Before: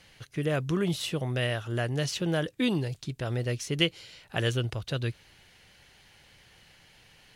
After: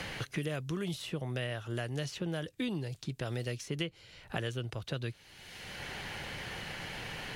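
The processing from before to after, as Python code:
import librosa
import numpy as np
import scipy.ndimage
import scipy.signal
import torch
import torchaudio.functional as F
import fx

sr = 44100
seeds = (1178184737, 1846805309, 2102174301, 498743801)

y = fx.band_squash(x, sr, depth_pct=100)
y = y * 10.0 ** (-7.5 / 20.0)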